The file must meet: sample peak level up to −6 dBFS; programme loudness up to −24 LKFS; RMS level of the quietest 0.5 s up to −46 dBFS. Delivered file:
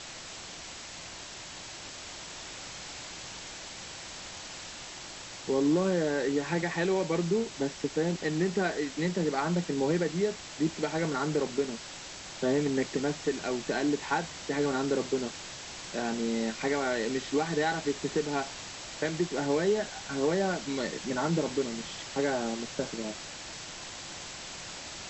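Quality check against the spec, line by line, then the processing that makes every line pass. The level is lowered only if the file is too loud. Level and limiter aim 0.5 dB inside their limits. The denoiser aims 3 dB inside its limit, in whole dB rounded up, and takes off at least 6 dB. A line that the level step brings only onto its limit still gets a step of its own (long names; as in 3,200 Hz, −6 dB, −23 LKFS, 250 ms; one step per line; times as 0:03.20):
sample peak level −16.5 dBFS: in spec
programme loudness −32.0 LKFS: in spec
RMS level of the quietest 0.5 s −44 dBFS: out of spec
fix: broadband denoise 6 dB, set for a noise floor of −44 dBFS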